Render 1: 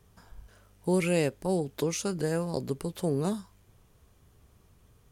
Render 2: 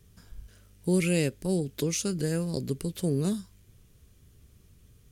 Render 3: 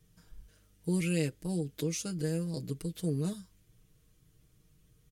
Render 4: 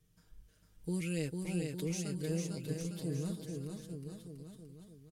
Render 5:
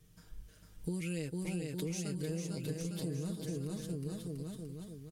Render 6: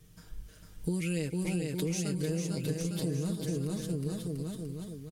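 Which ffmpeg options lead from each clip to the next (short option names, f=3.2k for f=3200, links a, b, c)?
-af "equalizer=f=870:t=o:w=1.5:g=-14.5,volume=4dB"
-af "aecho=1:1:6.4:0.74,volume=-8dB"
-af "aecho=1:1:450|855|1220|1548|1843:0.631|0.398|0.251|0.158|0.1,volume=-6dB"
-af "acompressor=threshold=-43dB:ratio=6,volume=8dB"
-af "aecho=1:1:284:0.112,volume=5.5dB"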